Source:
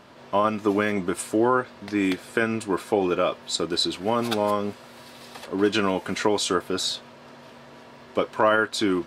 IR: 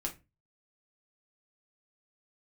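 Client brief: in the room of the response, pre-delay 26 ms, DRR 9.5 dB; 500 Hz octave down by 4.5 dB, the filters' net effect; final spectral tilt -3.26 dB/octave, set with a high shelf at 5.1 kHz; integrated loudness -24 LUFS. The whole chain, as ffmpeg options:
-filter_complex "[0:a]equalizer=f=500:t=o:g=-6,highshelf=f=5100:g=5,asplit=2[s0][s1];[1:a]atrim=start_sample=2205,adelay=26[s2];[s1][s2]afir=irnorm=-1:irlink=0,volume=0.299[s3];[s0][s3]amix=inputs=2:normalize=0,volume=1.12"

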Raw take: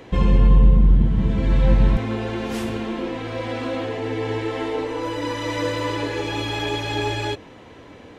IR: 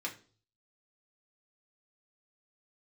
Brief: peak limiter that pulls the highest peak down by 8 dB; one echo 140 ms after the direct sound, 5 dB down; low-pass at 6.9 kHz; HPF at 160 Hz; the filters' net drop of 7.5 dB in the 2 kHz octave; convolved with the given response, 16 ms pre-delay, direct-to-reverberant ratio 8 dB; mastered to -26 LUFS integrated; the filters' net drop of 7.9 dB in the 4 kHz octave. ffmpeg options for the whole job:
-filter_complex "[0:a]highpass=160,lowpass=6900,equalizer=f=2000:t=o:g=-7.5,equalizer=f=4000:t=o:g=-7,alimiter=limit=0.112:level=0:latency=1,aecho=1:1:140:0.562,asplit=2[s0][s1];[1:a]atrim=start_sample=2205,adelay=16[s2];[s1][s2]afir=irnorm=-1:irlink=0,volume=0.316[s3];[s0][s3]amix=inputs=2:normalize=0,volume=1.06"

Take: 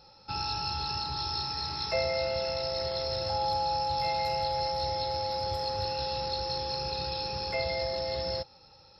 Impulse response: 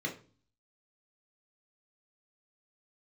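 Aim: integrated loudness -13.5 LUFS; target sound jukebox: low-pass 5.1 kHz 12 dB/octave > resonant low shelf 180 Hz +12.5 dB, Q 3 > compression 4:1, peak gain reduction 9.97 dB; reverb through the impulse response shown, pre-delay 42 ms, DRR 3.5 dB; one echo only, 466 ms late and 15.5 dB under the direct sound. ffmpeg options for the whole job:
-filter_complex "[0:a]aecho=1:1:466:0.168,asplit=2[s0][s1];[1:a]atrim=start_sample=2205,adelay=42[s2];[s1][s2]afir=irnorm=-1:irlink=0,volume=0.422[s3];[s0][s3]amix=inputs=2:normalize=0,lowpass=5100,lowshelf=f=180:t=q:w=3:g=12.5,acompressor=threshold=0.0447:ratio=4,volume=7.5"

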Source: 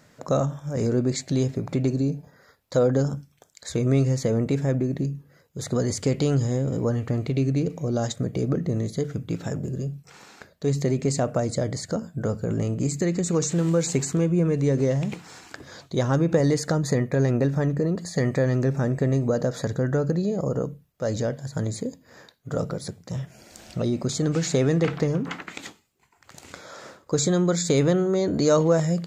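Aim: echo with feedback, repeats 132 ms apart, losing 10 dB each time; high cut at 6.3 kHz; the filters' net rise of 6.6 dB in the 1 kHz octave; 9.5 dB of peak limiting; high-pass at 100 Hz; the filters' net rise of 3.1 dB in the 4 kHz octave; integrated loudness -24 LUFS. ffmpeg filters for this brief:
-af "highpass=100,lowpass=6300,equalizer=f=1000:t=o:g=9,equalizer=f=4000:t=o:g=4,alimiter=limit=0.224:level=0:latency=1,aecho=1:1:132|264|396|528:0.316|0.101|0.0324|0.0104,volume=1.12"

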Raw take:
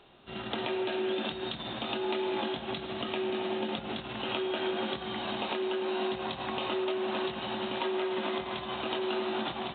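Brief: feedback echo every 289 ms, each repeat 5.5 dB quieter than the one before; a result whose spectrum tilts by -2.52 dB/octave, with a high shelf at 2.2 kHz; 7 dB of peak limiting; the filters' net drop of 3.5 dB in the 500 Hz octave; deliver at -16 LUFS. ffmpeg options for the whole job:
-af "equalizer=f=500:t=o:g=-5.5,highshelf=f=2200:g=-4,alimiter=level_in=1.41:limit=0.0631:level=0:latency=1,volume=0.708,aecho=1:1:289|578|867|1156|1445|1734|2023:0.531|0.281|0.149|0.079|0.0419|0.0222|0.0118,volume=10"

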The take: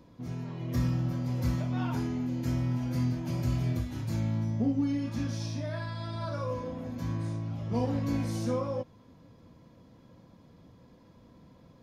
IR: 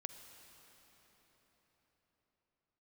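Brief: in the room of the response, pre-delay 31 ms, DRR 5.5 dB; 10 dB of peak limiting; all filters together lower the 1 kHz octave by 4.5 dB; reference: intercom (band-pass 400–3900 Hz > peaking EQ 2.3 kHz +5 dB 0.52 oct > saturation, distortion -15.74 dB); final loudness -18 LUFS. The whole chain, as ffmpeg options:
-filter_complex "[0:a]equalizer=f=1000:t=o:g=-5.5,alimiter=level_in=1.58:limit=0.0631:level=0:latency=1,volume=0.631,asplit=2[s0][s1];[1:a]atrim=start_sample=2205,adelay=31[s2];[s1][s2]afir=irnorm=-1:irlink=0,volume=0.794[s3];[s0][s3]amix=inputs=2:normalize=0,highpass=400,lowpass=3900,equalizer=f=2300:t=o:w=0.52:g=5,asoftclip=threshold=0.015,volume=23.7"

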